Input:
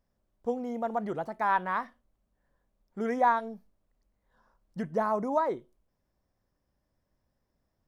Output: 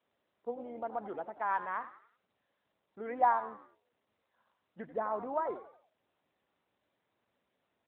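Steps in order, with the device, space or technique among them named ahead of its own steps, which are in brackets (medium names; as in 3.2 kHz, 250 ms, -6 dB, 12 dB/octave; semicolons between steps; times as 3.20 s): 3.06–3.48 s: dynamic bell 800 Hz, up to +5 dB, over -36 dBFS, Q 2.5; frequency-shifting echo 89 ms, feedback 39%, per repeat +68 Hz, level -13.5 dB; telephone (band-pass 310–3400 Hz; trim -5.5 dB; AMR-NB 12.2 kbps 8 kHz)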